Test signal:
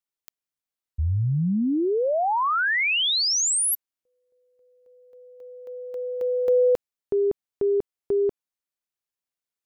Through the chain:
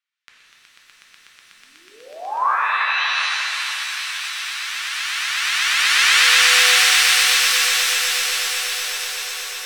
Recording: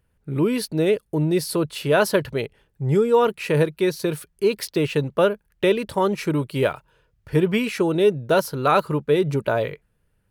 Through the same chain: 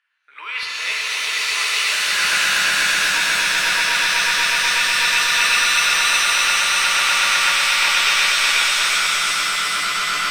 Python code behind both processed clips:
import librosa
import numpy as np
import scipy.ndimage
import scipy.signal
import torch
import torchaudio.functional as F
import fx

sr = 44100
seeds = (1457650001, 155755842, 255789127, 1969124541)

y = scipy.signal.sosfilt(scipy.signal.butter(4, 1400.0, 'highpass', fs=sr, output='sos'), x)
y = fx.high_shelf(y, sr, hz=2100.0, db=3.0)
y = 10.0 ** (-17.5 / 20.0) * (np.abs((y / 10.0 ** (-17.5 / 20.0) + 3.0) % 4.0 - 2.0) - 1.0)
y = scipy.signal.sosfilt(scipy.signal.butter(2, 2700.0, 'lowpass', fs=sr, output='sos'), y)
y = fx.echo_swell(y, sr, ms=123, loudest=8, wet_db=-4)
y = fx.over_compress(y, sr, threshold_db=-30.0, ratio=-0.5)
y = fx.rev_shimmer(y, sr, seeds[0], rt60_s=3.6, semitones=7, shimmer_db=-2, drr_db=-3.5)
y = y * 10.0 ** (5.5 / 20.0)